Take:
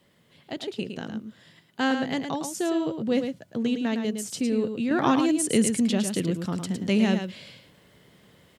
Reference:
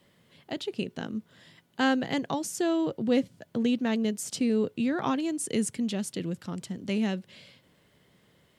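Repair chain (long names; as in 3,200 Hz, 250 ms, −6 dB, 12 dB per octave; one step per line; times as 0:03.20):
echo removal 109 ms −7 dB
level 0 dB, from 0:04.91 −6 dB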